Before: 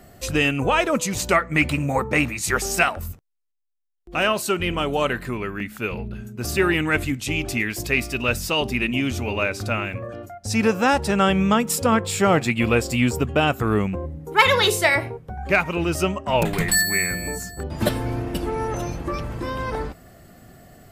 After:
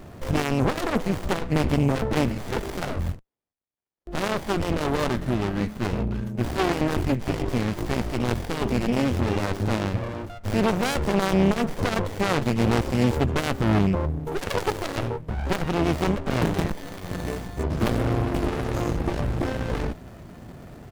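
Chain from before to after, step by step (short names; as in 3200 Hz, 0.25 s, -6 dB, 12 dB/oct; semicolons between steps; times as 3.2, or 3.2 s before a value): tube stage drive 23 dB, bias 0.45; harmoniser -3 st -15 dB; running maximum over 33 samples; gain +8.5 dB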